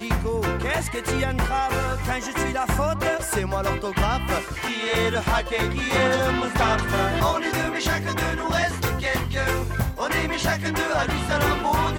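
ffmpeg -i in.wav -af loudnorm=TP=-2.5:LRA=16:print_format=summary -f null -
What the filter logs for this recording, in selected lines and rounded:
Input Integrated:    -23.6 LUFS
Input True Peak:     -11.0 dBTP
Input LRA:             1.8 LU
Input Threshold:     -33.6 LUFS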